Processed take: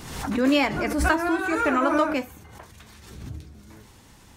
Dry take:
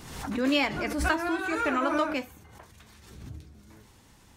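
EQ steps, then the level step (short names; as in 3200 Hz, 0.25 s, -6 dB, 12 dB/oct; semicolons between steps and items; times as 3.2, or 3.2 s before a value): dynamic EQ 3500 Hz, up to -5 dB, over -43 dBFS, Q 0.89; +5.5 dB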